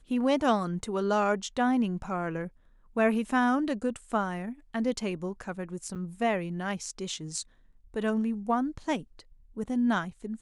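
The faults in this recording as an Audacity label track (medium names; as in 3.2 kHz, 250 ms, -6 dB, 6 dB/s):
5.950000	5.960000	dropout 7.8 ms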